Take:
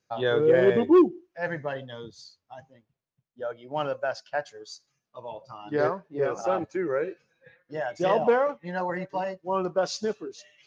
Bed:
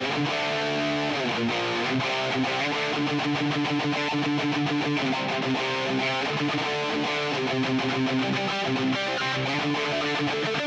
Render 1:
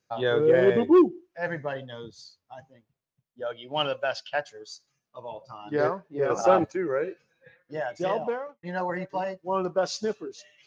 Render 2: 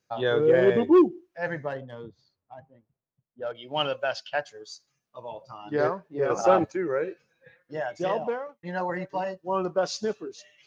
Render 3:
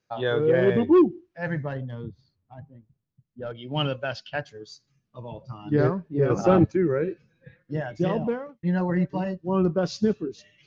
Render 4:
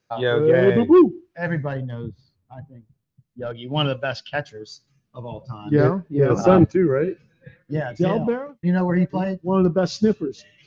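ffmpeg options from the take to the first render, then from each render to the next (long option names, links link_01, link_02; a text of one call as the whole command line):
ffmpeg -i in.wav -filter_complex "[0:a]asettb=1/sr,asplit=3[link_01][link_02][link_03];[link_01]atrim=end=3.464[link_04];[link_02]atrim=start=3.46:end=4.4,asetpts=PTS-STARTPTS,afade=type=in:duration=0.004:curve=qsin,afade=type=out:start_time=0.936:duration=0.004:curve=qsin,equalizer=frequency=3100:width_type=o:width=0.8:gain=14.5[link_05];[link_03]atrim=start=4.396[link_06];[link_04][link_05]acrossfade=duration=0.004:curve1=hsin:curve2=qsin[link_07];[link_07][link_06]acrossfade=duration=0.004:curve1=qsin:curve2=hsin,asplit=4[link_08][link_09][link_10][link_11];[link_08]atrim=end=6.302[link_12];[link_09]atrim=start=6.298:end=6.722,asetpts=PTS-STARTPTS,volume=6.5dB[link_13];[link_10]atrim=start=6.718:end=8.63,asetpts=PTS-STARTPTS,afade=type=out:start_time=1.092:duration=0.82[link_14];[link_11]atrim=start=8.63,asetpts=PTS-STARTPTS,afade=type=in:duration=0.004:curve=hsin[link_15];[link_12][link_13]acrossfade=duration=0.004:curve1=hsin:curve2=hsin[link_16];[link_14][link_15]concat=n=2:v=0:a=1[link_17];[link_16][link_17]acrossfade=duration=0.004:curve1=hsin:curve2=hsin" out.wav
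ffmpeg -i in.wav -filter_complex "[0:a]asettb=1/sr,asplit=3[link_01][link_02][link_03];[link_01]atrim=end=1.684[link_04];[link_02]atrim=start=1.68:end=3.55,asetpts=PTS-STARTPTS,afade=type=in:duration=0.004:curve=qsin,afade=type=out:start_time=1.866:duration=0.004:curve=qsin,adynamicsmooth=sensitivity=2.5:basefreq=1500[link_05];[link_03]atrim=start=3.546[link_06];[link_04][link_05]acrossfade=duration=0.004:curve1=hsin:curve2=qsin[link_07];[link_07][link_06]acrossfade=duration=0.004:curve1=qsin:curve2=hsin,asettb=1/sr,asplit=3[link_08][link_09][link_10];[link_08]atrim=end=9.254[link_11];[link_09]atrim=start=9.25:end=9.7,asetpts=PTS-STARTPTS,afade=type=in:duration=0.004:curve=qsin,afade=type=out:start_time=0.446:duration=0.004:curve=qsin,asuperstop=centerf=2200:order=12:qfactor=7[link_12];[link_10]atrim=start=9.696[link_13];[link_11][link_12]acrossfade=duration=0.004:curve1=hsin:curve2=qsin[link_14];[link_14][link_13]acrossfade=duration=0.004:curve1=qsin:curve2=hsin" out.wav
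ffmpeg -i in.wav -af "lowpass=5300,asubboost=boost=7.5:cutoff=250" out.wav
ffmpeg -i in.wav -af "volume=4.5dB" out.wav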